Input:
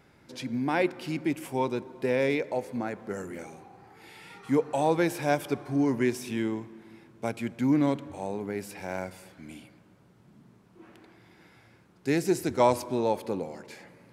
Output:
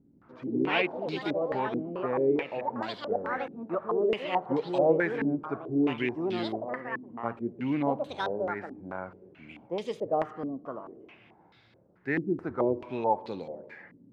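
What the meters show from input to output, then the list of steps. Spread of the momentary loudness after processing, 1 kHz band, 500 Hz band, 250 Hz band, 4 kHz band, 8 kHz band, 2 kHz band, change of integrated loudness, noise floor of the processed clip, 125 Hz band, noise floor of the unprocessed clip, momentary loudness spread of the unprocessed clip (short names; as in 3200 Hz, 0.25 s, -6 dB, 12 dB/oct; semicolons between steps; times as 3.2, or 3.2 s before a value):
13 LU, +0.5 dB, +0.5 dB, -2.0 dB, +1.5 dB, under -20 dB, +1.5 dB, -1.5 dB, -61 dBFS, -4.5 dB, -59 dBFS, 21 LU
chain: echoes that change speed 0.13 s, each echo +4 st, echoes 3; stepped low-pass 4.6 Hz 270–3900 Hz; gain -6 dB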